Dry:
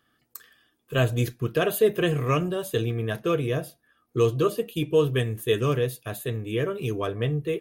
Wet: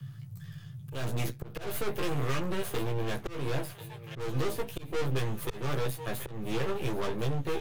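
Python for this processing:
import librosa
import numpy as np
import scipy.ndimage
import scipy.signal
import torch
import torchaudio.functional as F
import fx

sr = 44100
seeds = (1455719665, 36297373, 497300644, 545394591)

y = np.maximum(x, 0.0)
y = fx.echo_thinned(y, sr, ms=1041, feedback_pct=66, hz=920.0, wet_db=-18.0)
y = np.clip(10.0 ** (25.5 / 20.0) * y, -1.0, 1.0) / 10.0 ** (25.5 / 20.0)
y = fx.doubler(y, sr, ms=15.0, db=-3)
y = fx.auto_swell(y, sr, attack_ms=243.0)
y = fx.dmg_noise_band(y, sr, seeds[0], low_hz=99.0, high_hz=160.0, level_db=-50.0)
y = fx.band_squash(y, sr, depth_pct=40)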